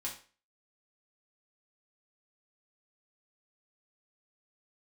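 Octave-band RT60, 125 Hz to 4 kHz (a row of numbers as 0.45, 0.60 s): 0.35, 0.40, 0.40, 0.35, 0.40, 0.35 s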